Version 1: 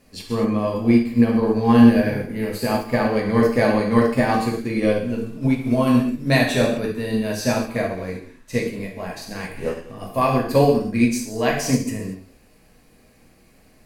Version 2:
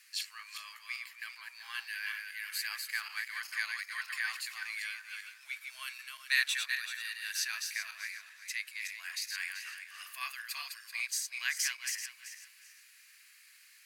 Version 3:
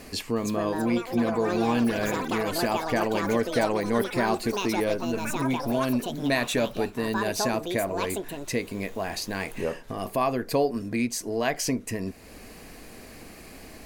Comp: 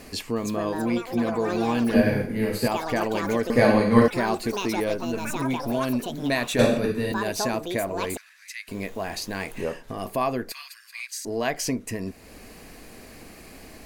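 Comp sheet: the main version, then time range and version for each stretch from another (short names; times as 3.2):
3
1.94–2.68 from 1
3.5–4.08 from 1
6.59–7.12 from 1
8.17–8.68 from 2
10.52–11.25 from 2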